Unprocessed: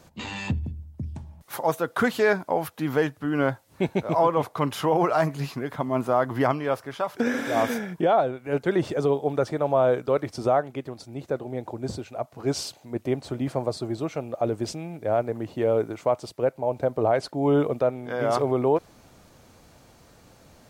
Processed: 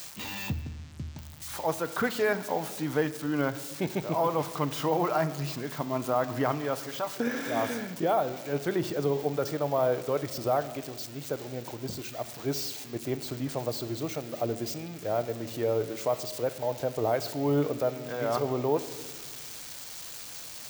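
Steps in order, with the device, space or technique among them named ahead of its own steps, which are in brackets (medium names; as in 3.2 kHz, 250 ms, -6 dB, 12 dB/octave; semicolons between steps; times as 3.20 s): budget class-D amplifier (dead-time distortion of 0.053 ms; zero-crossing glitches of -22 dBFS); 0.62–1.19 s: low-pass 8.6 kHz 12 dB/octave; simulated room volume 1200 m³, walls mixed, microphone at 0.46 m; trim -5.5 dB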